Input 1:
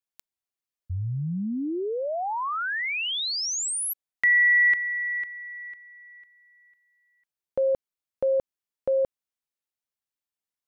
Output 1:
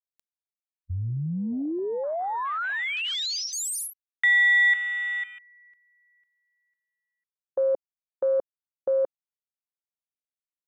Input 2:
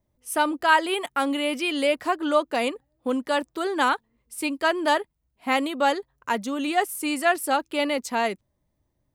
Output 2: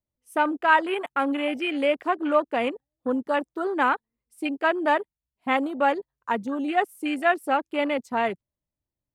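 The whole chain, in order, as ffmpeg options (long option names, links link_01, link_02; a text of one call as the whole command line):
ffmpeg -i in.wav -af "afwtdn=0.0282" out.wav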